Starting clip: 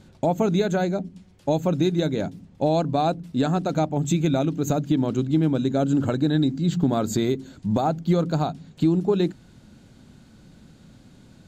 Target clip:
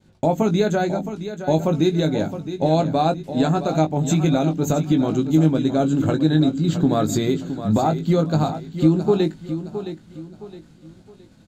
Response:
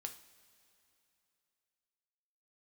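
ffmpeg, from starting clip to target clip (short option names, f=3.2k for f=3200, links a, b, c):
-filter_complex "[0:a]agate=range=-33dB:threshold=-44dB:ratio=3:detection=peak,asplit=2[a][b];[b]adelay=19,volume=-7dB[c];[a][c]amix=inputs=2:normalize=0,aecho=1:1:666|1332|1998|2664:0.282|0.0958|0.0326|0.0111,volume=2dB"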